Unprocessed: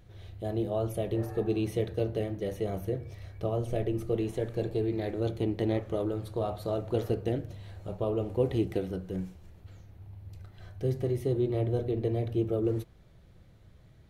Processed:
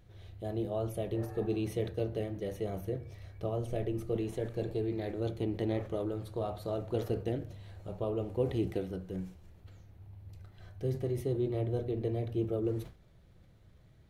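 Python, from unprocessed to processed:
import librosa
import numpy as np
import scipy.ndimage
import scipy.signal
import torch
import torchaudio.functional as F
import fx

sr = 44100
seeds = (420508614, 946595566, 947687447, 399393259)

y = fx.sustainer(x, sr, db_per_s=140.0)
y = y * 10.0 ** (-4.0 / 20.0)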